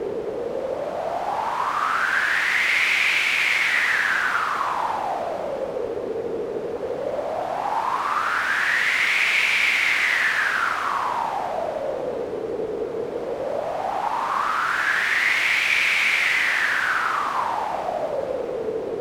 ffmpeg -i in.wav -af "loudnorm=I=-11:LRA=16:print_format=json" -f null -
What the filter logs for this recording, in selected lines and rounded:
"input_i" : "-21.6",
"input_tp" : "-8.1",
"input_lra" : "5.6",
"input_thresh" : "-31.6",